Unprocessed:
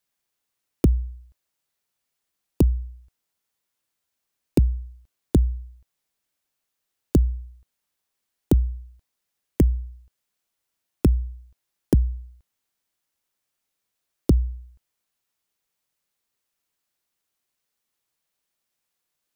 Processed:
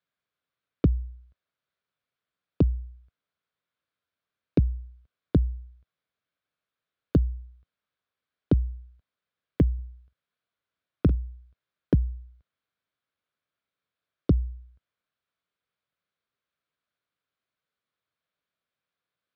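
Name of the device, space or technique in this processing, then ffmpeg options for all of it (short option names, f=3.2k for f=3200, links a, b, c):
guitar cabinet: -filter_complex "[0:a]equalizer=f=1.5k:w=2.9:g=3,asettb=1/sr,asplit=3[a][b][c];[a]atrim=end=9.744[d];[b]atrim=start=9.74:end=11.15,asetpts=PTS-STARTPTS,afade=t=in:d=0.004:c=qsin,afade=t=out:st=1.406:d=0.004:c=qsin,asplit=2[e][f];[f]adelay=46,volume=-14dB[g];[e][g]amix=inputs=2:normalize=0,atrim=end_sample=62181[h];[c]atrim=start=11.146[i];[d][h]acrossfade=d=0.004:c1=hsin:c2=qsin[j];[j][i]acrossfade=d=0.004:c1=qsin:c2=hsin,highpass=76,equalizer=f=230:t=q:w=4:g=-4,equalizer=f=350:t=q:w=4:g=-6,equalizer=f=850:t=q:w=4:g=-9,equalizer=f=1.9k:t=q:w=4:g=-5,equalizer=f=2.8k:t=q:w=4:g=-6,lowpass=f=3.5k:w=0.5412,lowpass=f=3.5k:w=1.3066"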